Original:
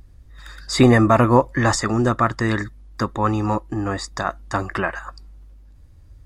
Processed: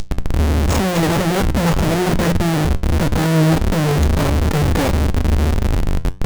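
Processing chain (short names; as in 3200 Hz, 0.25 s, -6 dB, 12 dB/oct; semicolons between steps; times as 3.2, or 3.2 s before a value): CVSD 32 kbps; in parallel at -4 dB: soft clip -19 dBFS, distortion -7 dB; on the sum: bell 1500 Hz -10 dB 1.7 oct; whine 4700 Hz -25 dBFS; thinning echo 0.446 s, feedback 40%, high-pass 920 Hz, level -14.5 dB; formant-preserving pitch shift +7 st; Schmitt trigger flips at -21.5 dBFS; flange 1.6 Hz, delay 9.6 ms, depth 3.6 ms, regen +79%; formant shift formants +6 st; low shelf 300 Hz +4.5 dB; notches 60/120/180 Hz; gain +7 dB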